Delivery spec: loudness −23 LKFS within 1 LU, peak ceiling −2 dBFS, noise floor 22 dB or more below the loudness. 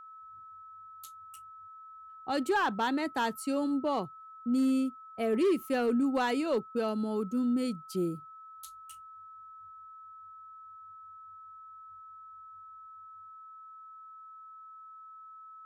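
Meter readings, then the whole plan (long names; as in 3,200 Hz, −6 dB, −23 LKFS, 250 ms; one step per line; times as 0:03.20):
share of clipped samples 0.4%; peaks flattened at −22.0 dBFS; interfering tone 1,300 Hz; level of the tone −47 dBFS; integrated loudness −30.5 LKFS; sample peak −22.0 dBFS; target loudness −23.0 LKFS
→ clipped peaks rebuilt −22 dBFS
notch filter 1,300 Hz, Q 30
level +7.5 dB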